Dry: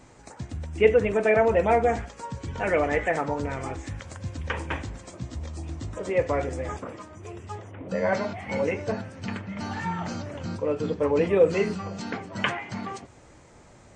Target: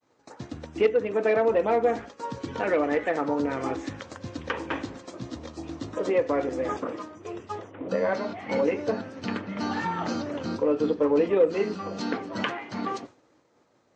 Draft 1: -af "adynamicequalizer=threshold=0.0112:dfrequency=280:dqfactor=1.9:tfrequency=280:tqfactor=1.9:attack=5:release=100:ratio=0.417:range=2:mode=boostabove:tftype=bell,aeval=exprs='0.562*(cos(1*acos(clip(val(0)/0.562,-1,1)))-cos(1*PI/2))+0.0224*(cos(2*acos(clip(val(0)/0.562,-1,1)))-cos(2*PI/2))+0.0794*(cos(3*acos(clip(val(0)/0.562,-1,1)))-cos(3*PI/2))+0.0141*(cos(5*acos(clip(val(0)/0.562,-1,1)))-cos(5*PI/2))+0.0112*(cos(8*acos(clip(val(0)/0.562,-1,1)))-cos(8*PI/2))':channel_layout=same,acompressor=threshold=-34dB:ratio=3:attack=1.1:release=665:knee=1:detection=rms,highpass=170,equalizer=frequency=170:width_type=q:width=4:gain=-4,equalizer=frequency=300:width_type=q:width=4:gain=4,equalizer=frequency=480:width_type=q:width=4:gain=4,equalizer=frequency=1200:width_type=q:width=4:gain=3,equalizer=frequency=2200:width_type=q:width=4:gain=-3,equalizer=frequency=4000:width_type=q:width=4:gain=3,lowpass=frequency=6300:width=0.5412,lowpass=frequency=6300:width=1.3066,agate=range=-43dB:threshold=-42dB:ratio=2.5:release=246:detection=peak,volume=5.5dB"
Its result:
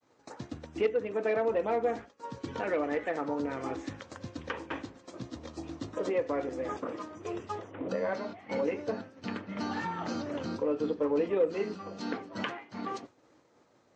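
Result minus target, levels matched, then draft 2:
downward compressor: peak gain reduction +6.5 dB
-af "adynamicequalizer=threshold=0.0112:dfrequency=280:dqfactor=1.9:tfrequency=280:tqfactor=1.9:attack=5:release=100:ratio=0.417:range=2:mode=boostabove:tftype=bell,aeval=exprs='0.562*(cos(1*acos(clip(val(0)/0.562,-1,1)))-cos(1*PI/2))+0.0224*(cos(2*acos(clip(val(0)/0.562,-1,1)))-cos(2*PI/2))+0.0794*(cos(3*acos(clip(val(0)/0.562,-1,1)))-cos(3*PI/2))+0.0141*(cos(5*acos(clip(val(0)/0.562,-1,1)))-cos(5*PI/2))+0.0112*(cos(8*acos(clip(val(0)/0.562,-1,1)))-cos(8*PI/2))':channel_layout=same,acompressor=threshold=-24.5dB:ratio=3:attack=1.1:release=665:knee=1:detection=rms,highpass=170,equalizer=frequency=170:width_type=q:width=4:gain=-4,equalizer=frequency=300:width_type=q:width=4:gain=4,equalizer=frequency=480:width_type=q:width=4:gain=4,equalizer=frequency=1200:width_type=q:width=4:gain=3,equalizer=frequency=2200:width_type=q:width=4:gain=-3,equalizer=frequency=4000:width_type=q:width=4:gain=3,lowpass=frequency=6300:width=0.5412,lowpass=frequency=6300:width=1.3066,agate=range=-43dB:threshold=-42dB:ratio=2.5:release=246:detection=peak,volume=5.5dB"

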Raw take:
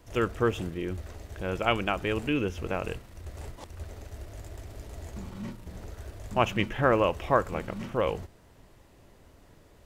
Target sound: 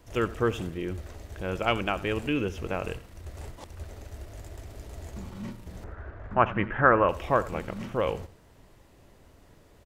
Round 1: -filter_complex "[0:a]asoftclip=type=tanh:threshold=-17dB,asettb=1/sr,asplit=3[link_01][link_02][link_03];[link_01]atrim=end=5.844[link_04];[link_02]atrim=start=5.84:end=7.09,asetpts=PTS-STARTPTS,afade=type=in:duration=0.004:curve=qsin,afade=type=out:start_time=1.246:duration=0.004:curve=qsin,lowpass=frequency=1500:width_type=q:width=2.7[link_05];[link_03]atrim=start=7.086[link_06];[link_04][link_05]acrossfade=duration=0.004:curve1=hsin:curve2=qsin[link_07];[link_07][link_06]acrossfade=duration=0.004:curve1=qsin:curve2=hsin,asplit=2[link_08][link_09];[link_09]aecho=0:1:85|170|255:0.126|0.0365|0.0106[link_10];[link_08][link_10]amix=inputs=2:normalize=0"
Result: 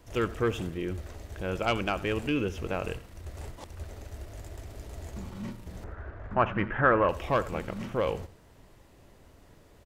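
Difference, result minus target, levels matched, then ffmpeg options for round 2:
soft clipping: distortion +16 dB
-filter_complex "[0:a]asoftclip=type=tanh:threshold=-6.5dB,asettb=1/sr,asplit=3[link_01][link_02][link_03];[link_01]atrim=end=5.844[link_04];[link_02]atrim=start=5.84:end=7.09,asetpts=PTS-STARTPTS,afade=type=in:duration=0.004:curve=qsin,afade=type=out:start_time=1.246:duration=0.004:curve=qsin,lowpass=frequency=1500:width_type=q:width=2.7[link_05];[link_03]atrim=start=7.086[link_06];[link_04][link_05]acrossfade=duration=0.004:curve1=hsin:curve2=qsin[link_07];[link_07][link_06]acrossfade=duration=0.004:curve1=qsin:curve2=hsin,asplit=2[link_08][link_09];[link_09]aecho=0:1:85|170|255:0.126|0.0365|0.0106[link_10];[link_08][link_10]amix=inputs=2:normalize=0"

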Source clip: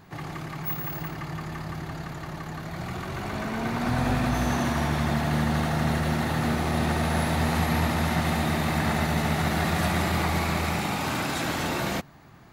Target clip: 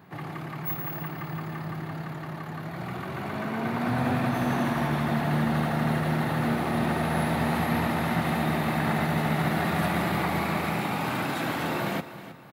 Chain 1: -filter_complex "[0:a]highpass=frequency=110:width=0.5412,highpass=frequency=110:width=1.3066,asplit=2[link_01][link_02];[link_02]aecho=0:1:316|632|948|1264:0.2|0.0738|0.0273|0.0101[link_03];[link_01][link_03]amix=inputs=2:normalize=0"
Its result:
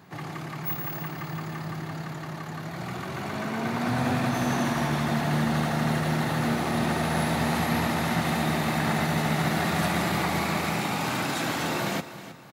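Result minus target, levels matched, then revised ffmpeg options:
8,000 Hz band +7.0 dB
-filter_complex "[0:a]highpass=frequency=110:width=0.5412,highpass=frequency=110:width=1.3066,equalizer=frequency=6400:width=0.96:gain=-11,asplit=2[link_01][link_02];[link_02]aecho=0:1:316|632|948|1264:0.2|0.0738|0.0273|0.0101[link_03];[link_01][link_03]amix=inputs=2:normalize=0"

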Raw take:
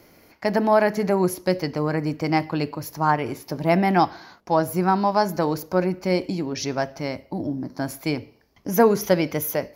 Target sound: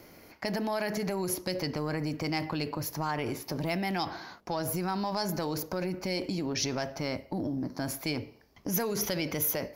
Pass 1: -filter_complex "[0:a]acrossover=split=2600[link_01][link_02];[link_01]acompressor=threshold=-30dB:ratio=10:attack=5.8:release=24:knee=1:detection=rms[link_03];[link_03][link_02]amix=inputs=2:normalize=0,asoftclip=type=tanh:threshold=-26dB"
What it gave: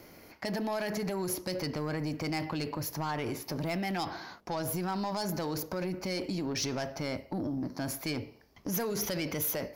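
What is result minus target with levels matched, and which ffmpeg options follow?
soft clipping: distortion +16 dB
-filter_complex "[0:a]acrossover=split=2600[link_01][link_02];[link_01]acompressor=threshold=-30dB:ratio=10:attack=5.8:release=24:knee=1:detection=rms[link_03];[link_03][link_02]amix=inputs=2:normalize=0,asoftclip=type=tanh:threshold=-15dB"

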